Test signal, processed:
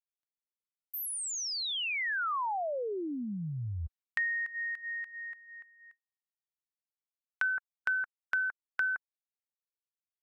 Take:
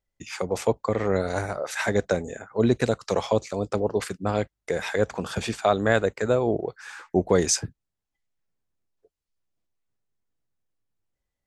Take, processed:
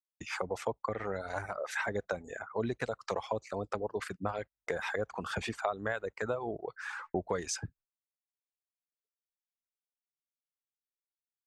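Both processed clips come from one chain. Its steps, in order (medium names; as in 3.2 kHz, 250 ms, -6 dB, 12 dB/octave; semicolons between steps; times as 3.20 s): gate -52 dBFS, range -42 dB; peaking EQ 1.2 kHz +11.5 dB 2.6 oct; compression 3:1, threshold -25 dBFS; bass shelf 110 Hz +7.5 dB; reverb removal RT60 0.91 s; trim -8 dB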